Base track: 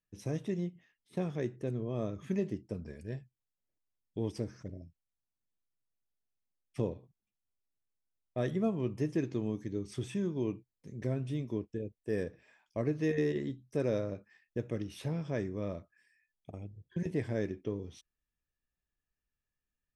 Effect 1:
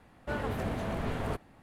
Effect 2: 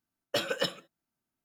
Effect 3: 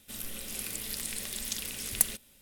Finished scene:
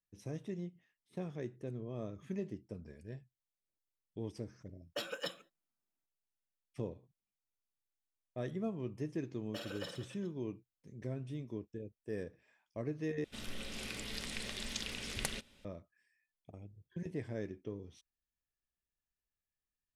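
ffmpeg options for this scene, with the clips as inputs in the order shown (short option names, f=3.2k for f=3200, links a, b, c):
-filter_complex "[2:a]asplit=2[a][b];[0:a]volume=-7dB[c];[a]equalizer=f=89:w=1.5:g=-13[d];[b]aecho=1:1:50|112.5|190.6|288.3|410.4:0.631|0.398|0.251|0.158|0.1[e];[3:a]lowpass=4.4k[f];[c]asplit=2[g][h];[g]atrim=end=13.244[i];[f]atrim=end=2.41[j];[h]atrim=start=15.646[k];[d]atrim=end=1.44,asetpts=PTS-STARTPTS,volume=-10dB,afade=t=in:d=0.004:c=hsin,afade=t=out:st=1.436:d=0.004:c=hsin,adelay=4620[l];[e]atrim=end=1.44,asetpts=PTS-STARTPTS,volume=-16.5dB,afade=t=in:d=0.004:c=hsin,afade=t=out:st=1.436:d=0.004:c=hsin,adelay=9200[m];[i][j]acrossfade=d=0.004:c1=hsin:c2=hsin[n];[n][k]acrossfade=d=0.004:c1=hsin:c2=hsin[o];[o][l][m]amix=inputs=3:normalize=0"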